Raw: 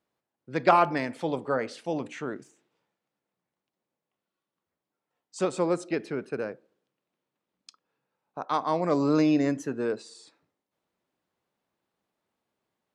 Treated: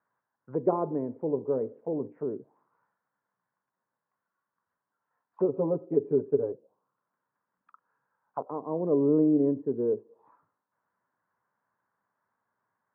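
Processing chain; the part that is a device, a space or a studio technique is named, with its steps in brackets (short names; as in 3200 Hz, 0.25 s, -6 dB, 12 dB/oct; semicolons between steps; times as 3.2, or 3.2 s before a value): 5.48–6.52 comb 7.1 ms, depth 94%; dynamic EQ 1700 Hz, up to -3 dB, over -39 dBFS, Q 1.1; envelope filter bass rig (envelope low-pass 400–1600 Hz down, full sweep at -32 dBFS; speaker cabinet 86–2100 Hz, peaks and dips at 110 Hz +7 dB, 340 Hz -6 dB, 1000 Hz +10 dB); gain -4 dB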